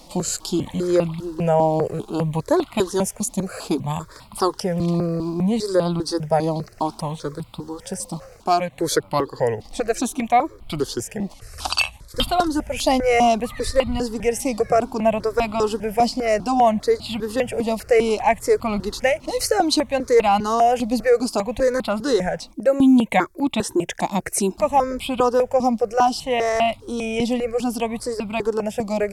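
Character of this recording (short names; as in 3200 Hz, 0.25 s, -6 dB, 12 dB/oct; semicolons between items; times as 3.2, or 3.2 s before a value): notches that jump at a steady rate 5 Hz 420–1700 Hz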